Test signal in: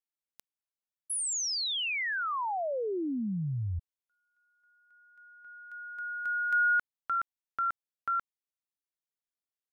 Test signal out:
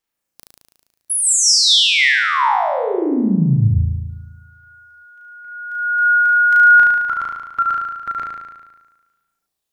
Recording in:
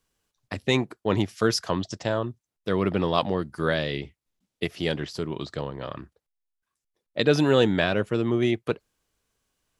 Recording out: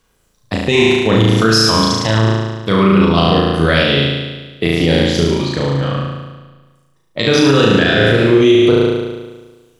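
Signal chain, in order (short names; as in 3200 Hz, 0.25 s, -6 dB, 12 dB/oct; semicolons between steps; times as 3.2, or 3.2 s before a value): dynamic EQ 4400 Hz, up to +4 dB, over -41 dBFS, Q 0.75; phaser 0.22 Hz, delay 1.1 ms, feedback 41%; on a send: flutter echo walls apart 6.2 m, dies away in 1.3 s; on the sum: maximiser +11 dB; gain -1 dB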